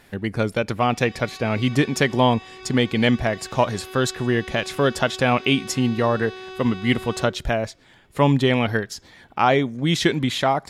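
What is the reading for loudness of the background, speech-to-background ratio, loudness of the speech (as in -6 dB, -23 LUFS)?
-38.5 LUFS, 17.0 dB, -21.5 LUFS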